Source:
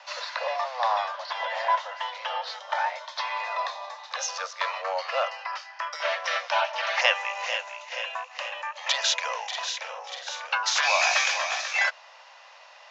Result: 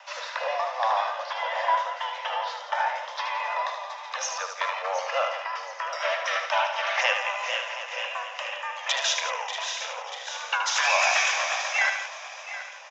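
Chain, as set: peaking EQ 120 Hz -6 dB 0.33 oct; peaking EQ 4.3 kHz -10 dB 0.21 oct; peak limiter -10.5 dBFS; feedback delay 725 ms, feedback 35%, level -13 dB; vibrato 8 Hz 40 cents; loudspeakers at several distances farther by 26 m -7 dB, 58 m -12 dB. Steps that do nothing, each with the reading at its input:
peaking EQ 120 Hz: input has nothing below 430 Hz

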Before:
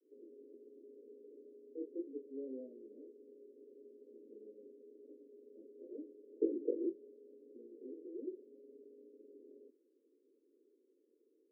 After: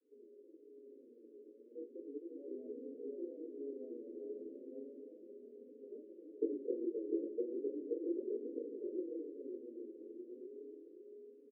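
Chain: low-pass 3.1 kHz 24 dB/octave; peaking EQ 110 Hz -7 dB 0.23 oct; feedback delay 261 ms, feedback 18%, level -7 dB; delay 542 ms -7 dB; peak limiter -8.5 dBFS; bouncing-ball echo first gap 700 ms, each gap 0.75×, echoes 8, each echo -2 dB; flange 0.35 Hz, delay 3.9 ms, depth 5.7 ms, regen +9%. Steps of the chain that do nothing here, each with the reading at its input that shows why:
low-pass 3.1 kHz: input has nothing above 600 Hz; peaking EQ 110 Hz: input has nothing below 210 Hz; peak limiter -8.5 dBFS: peak at its input -20.5 dBFS

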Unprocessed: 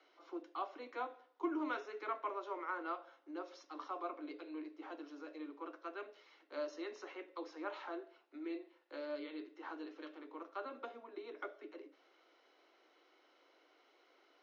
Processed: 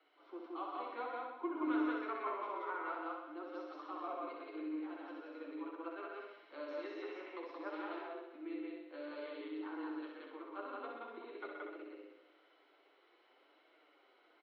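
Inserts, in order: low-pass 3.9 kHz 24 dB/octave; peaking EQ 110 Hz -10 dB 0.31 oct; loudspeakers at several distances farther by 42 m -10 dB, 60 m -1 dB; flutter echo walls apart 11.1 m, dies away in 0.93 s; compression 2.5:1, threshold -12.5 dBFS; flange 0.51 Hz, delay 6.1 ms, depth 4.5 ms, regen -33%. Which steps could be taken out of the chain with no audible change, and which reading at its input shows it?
peaking EQ 110 Hz: input has nothing below 230 Hz; compression, threshold -12.5 dBFS: peak at its input -21.5 dBFS

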